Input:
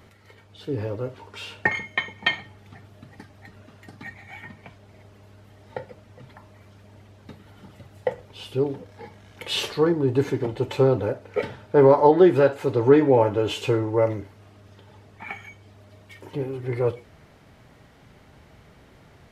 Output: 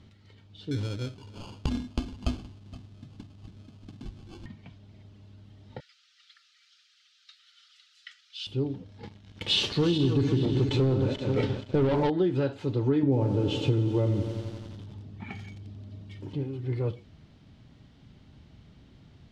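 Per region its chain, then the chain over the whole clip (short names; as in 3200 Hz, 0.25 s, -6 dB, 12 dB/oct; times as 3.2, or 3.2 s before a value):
0.71–4.46 echo 0.47 s -21.5 dB + sample-rate reducer 1900 Hz + core saturation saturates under 130 Hz
5.8–8.47 brick-wall FIR high-pass 1200 Hz + bell 5100 Hz +10 dB 1.7 oct
9.03–12.1 regenerating reverse delay 0.238 s, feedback 53%, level -7 dB + sample leveller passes 2
13.03–16.34 HPF 62 Hz 6 dB/oct + low shelf 500 Hz +10 dB + lo-fi delay 88 ms, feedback 80%, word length 6-bit, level -11 dB
whole clip: LPF 4200 Hz 12 dB/oct; band shelf 970 Hz -11.5 dB 2.9 oct; compressor, threshold -21 dBFS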